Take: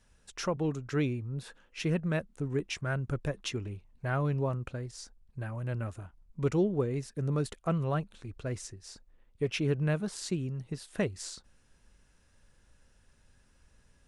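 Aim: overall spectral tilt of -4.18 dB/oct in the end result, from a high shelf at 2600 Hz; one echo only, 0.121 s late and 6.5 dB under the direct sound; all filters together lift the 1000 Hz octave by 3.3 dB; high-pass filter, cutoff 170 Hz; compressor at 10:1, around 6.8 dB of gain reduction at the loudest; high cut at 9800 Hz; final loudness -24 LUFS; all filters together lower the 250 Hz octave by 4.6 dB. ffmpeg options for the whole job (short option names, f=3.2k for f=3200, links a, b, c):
-af "highpass=170,lowpass=9.8k,equalizer=f=250:t=o:g=-5,equalizer=f=1k:t=o:g=4,highshelf=f=2.6k:g=4,acompressor=threshold=-32dB:ratio=10,aecho=1:1:121:0.473,volume=15dB"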